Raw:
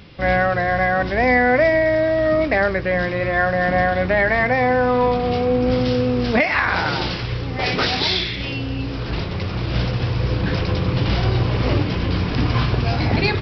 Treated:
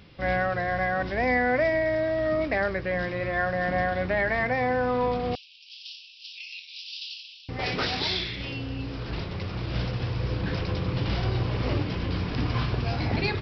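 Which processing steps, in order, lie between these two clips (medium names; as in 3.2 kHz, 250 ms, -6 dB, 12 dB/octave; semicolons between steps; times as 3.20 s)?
5.35–7.49 s: steep high-pass 2.6 kHz 96 dB/octave; trim -8 dB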